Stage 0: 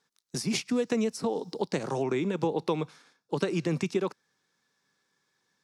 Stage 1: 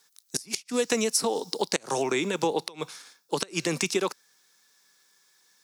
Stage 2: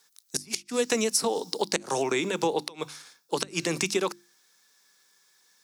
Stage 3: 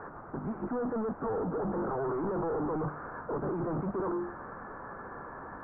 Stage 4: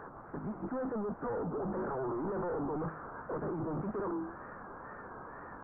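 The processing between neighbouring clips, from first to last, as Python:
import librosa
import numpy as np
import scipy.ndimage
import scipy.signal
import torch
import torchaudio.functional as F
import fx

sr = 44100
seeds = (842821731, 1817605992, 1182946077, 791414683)

y1 = fx.riaa(x, sr, side='recording')
y1 = fx.gate_flip(y1, sr, shuts_db=-15.0, range_db=-24)
y1 = F.gain(torch.from_numpy(y1), 5.5).numpy()
y2 = fx.hum_notches(y1, sr, base_hz=50, count=7)
y3 = np.sign(y2) * np.sqrt(np.mean(np.square(y2)))
y3 = scipy.signal.sosfilt(scipy.signal.butter(8, 1400.0, 'lowpass', fs=sr, output='sos'), y3)
y4 = fx.wow_flutter(y3, sr, seeds[0], rate_hz=2.1, depth_cents=120.0)
y4 = F.gain(torch.from_numpy(y4), -3.5).numpy()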